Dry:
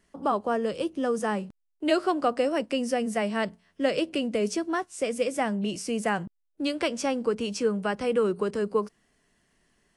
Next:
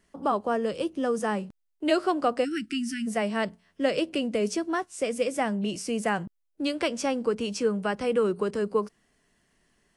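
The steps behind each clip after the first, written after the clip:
time-frequency box erased 0:02.44–0:03.07, 370–1,300 Hz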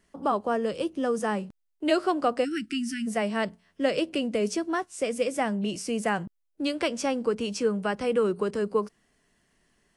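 no processing that can be heard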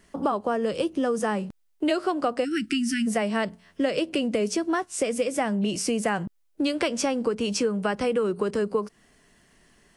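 downward compressor 4 to 1, threshold −32 dBFS, peak gain reduction 12 dB
level +9 dB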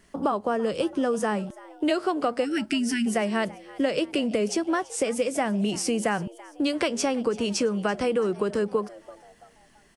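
echo with shifted repeats 335 ms, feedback 42%, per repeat +130 Hz, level −20.5 dB

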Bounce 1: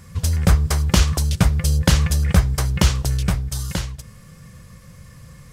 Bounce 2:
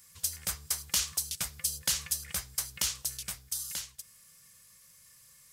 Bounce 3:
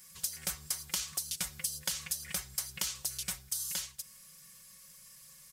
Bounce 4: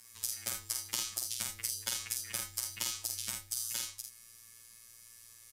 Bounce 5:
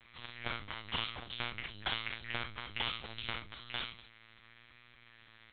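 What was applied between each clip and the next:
first-order pre-emphasis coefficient 0.97; level −2.5 dB
comb filter 5.4 ms, depth 81%; downward compressor 10 to 1, threshold −32 dBFS, peak gain reduction 11 dB; level +1 dB
phases set to zero 117 Hz; frequency shifter −21 Hz; ambience of single reflections 49 ms −3.5 dB, 79 ms −9.5 dB
pitch vibrato 0.88 Hz 48 cents; in parallel at −9.5 dB: sine wavefolder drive 8 dB, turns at −9.5 dBFS; on the sum: linear-prediction vocoder at 8 kHz pitch kept

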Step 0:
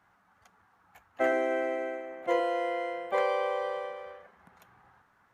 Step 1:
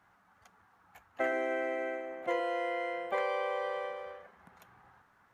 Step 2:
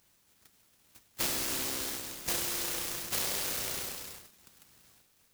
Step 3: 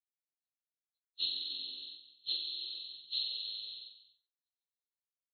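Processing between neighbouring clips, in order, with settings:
dynamic equaliser 2,000 Hz, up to +4 dB, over −44 dBFS, Q 1.1; downward compressor 2 to 1, threshold −33 dBFS, peak gain reduction 6.5 dB
compressing power law on the bin magnitudes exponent 0.33; short delay modulated by noise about 5,300 Hz, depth 0.48 ms
hearing-aid frequency compression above 2,500 Hz 4 to 1; every bin expanded away from the loudest bin 2.5 to 1; level −8 dB

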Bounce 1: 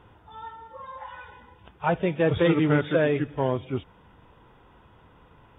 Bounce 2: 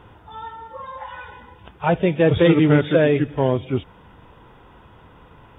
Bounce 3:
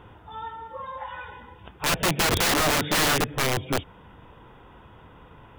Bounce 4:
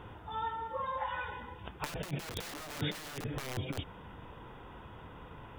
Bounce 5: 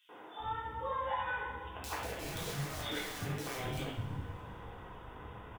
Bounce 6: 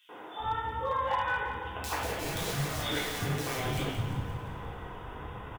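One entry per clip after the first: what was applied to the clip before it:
dynamic equaliser 1,200 Hz, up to −5 dB, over −40 dBFS, Q 1.1; level +7 dB
wrap-around overflow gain 15.5 dB; level −1.5 dB
compressor whose output falls as the input rises −29 dBFS, ratio −0.5; level −6.5 dB
three-band delay without the direct sound highs, mids, lows 90/400 ms, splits 250/3,000 Hz; coupled-rooms reverb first 0.55 s, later 3.3 s, from −21 dB, DRR −4.5 dB; level −3.5 dB
gain into a clipping stage and back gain 29 dB; repeating echo 175 ms, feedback 53%, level −10 dB; level +6 dB

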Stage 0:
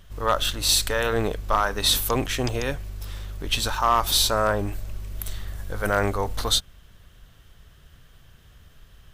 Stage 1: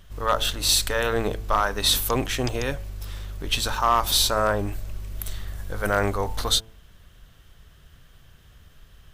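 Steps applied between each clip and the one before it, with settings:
hum removal 110.9 Hz, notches 9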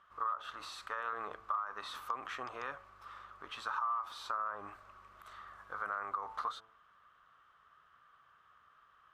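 brickwall limiter −17.5 dBFS, peak gain reduction 8 dB
resonant band-pass 1,200 Hz, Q 7.7
downward compressor 6 to 1, threshold −41 dBFS, peak gain reduction 12.5 dB
level +7.5 dB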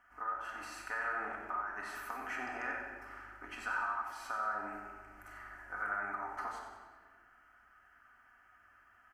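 phaser with its sweep stopped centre 740 Hz, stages 8
repeating echo 93 ms, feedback 44%, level −9 dB
rectangular room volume 1,500 cubic metres, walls mixed, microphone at 1.9 metres
level +3 dB

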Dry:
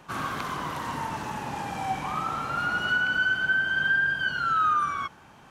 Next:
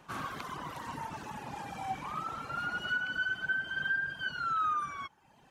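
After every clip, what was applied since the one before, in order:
reverb reduction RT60 1.1 s
level −6 dB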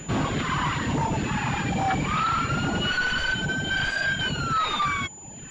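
all-pass phaser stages 2, 1.2 Hz, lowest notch 500–1,500 Hz
sine wavefolder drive 14 dB, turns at −25.5 dBFS
switching amplifier with a slow clock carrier 7,000 Hz
level +5.5 dB

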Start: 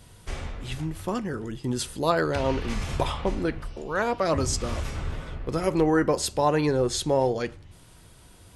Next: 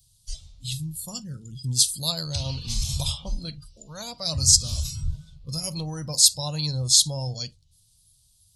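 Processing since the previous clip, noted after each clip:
hum removal 94.92 Hz, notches 3
noise reduction from a noise print of the clip's start 18 dB
drawn EQ curve 130 Hz 0 dB, 390 Hz −30 dB, 580 Hz −17 dB, 1,000 Hz −20 dB, 1,800 Hz −26 dB, 4,100 Hz +9 dB
level +5 dB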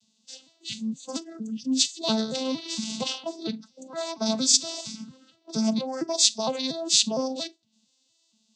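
vocoder with an arpeggio as carrier minor triad, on A3, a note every 231 ms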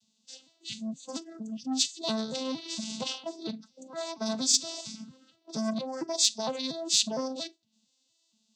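saturating transformer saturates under 2,800 Hz
level −4 dB

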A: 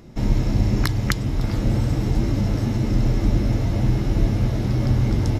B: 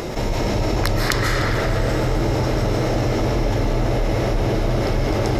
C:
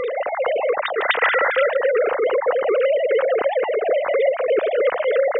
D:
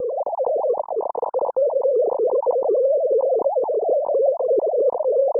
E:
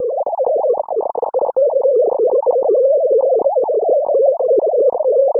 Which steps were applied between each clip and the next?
low shelf with overshoot 330 Hz −9.5 dB, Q 1.5; convolution reverb RT60 3.7 s, pre-delay 105 ms, DRR −4 dB; envelope flattener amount 70%; level −1 dB
three sine waves on the formant tracks
Butterworth low-pass 1,000 Hz 96 dB per octave
notch filter 1,000 Hz, Q 8.1; level +5.5 dB

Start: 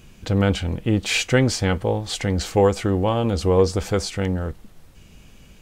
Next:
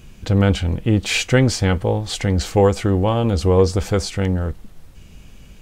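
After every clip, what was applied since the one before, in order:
low-shelf EQ 120 Hz +5.5 dB
level +1.5 dB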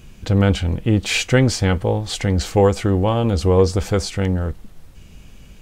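no processing that can be heard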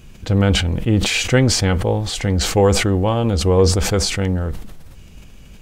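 level that may fall only so fast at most 47 dB per second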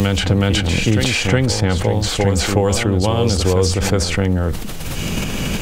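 backwards echo 370 ms −6.5 dB
multiband upward and downward compressor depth 100%
level −1 dB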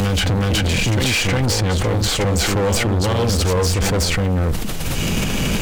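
hard clipping −18 dBFS, distortion −7 dB
level +3 dB

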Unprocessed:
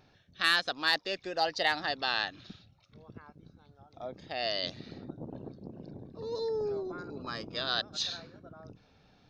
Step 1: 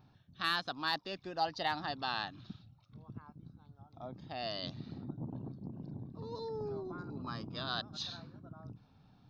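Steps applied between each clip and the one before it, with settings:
octave-band graphic EQ 125/250/500/1,000/2,000/8,000 Hz +8/+4/−8/+6/−8/−11 dB
level −3.5 dB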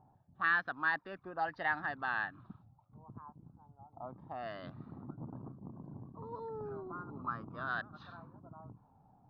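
envelope-controlled low-pass 800–1,700 Hz up, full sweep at −34 dBFS
level −4 dB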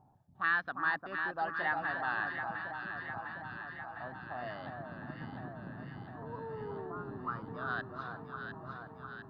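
delay that swaps between a low-pass and a high-pass 352 ms, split 1,300 Hz, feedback 82%, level −4 dB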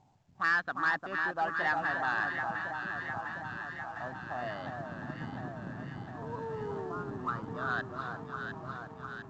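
leveller curve on the samples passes 1
mu-law 128 kbit/s 16,000 Hz

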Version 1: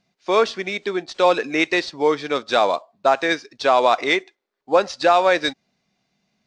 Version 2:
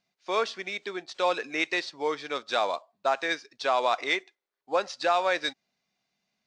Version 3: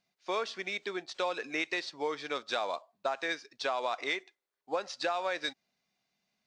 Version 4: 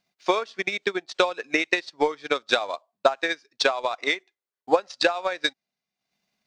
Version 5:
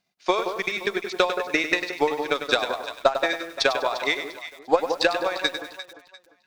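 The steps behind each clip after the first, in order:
low-shelf EQ 450 Hz −9.5 dB; level −6.5 dB
downward compressor, threshold −27 dBFS, peak gain reduction 8 dB; level −1.5 dB
transient designer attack +12 dB, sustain −10 dB; level +3.5 dB
delay that swaps between a low-pass and a high-pass 174 ms, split 1,400 Hz, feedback 54%, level −7.5 dB; harmonic generator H 6 −33 dB, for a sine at −1 dBFS; feedback echo at a low word length 99 ms, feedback 35%, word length 7 bits, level −9 dB

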